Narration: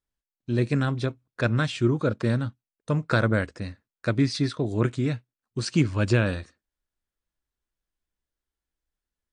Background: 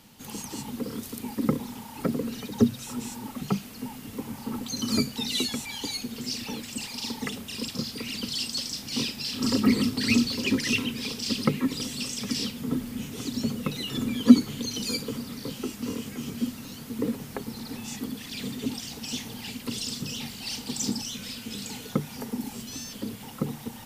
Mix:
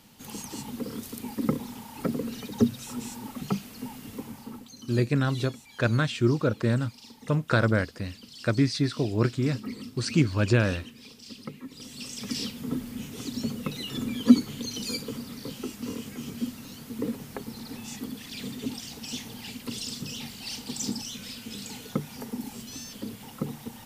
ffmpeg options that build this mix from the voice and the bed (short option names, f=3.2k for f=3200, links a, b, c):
-filter_complex "[0:a]adelay=4400,volume=-0.5dB[a];[1:a]volume=11.5dB,afade=t=out:st=4.09:d=0.64:silence=0.199526,afade=t=in:st=11.71:d=0.64:silence=0.223872[b];[a][b]amix=inputs=2:normalize=0"